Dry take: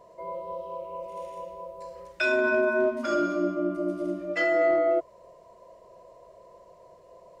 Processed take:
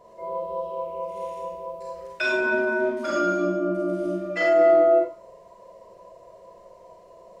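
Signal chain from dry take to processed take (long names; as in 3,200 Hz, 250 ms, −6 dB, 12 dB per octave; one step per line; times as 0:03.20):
four-comb reverb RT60 0.34 s, combs from 32 ms, DRR −1 dB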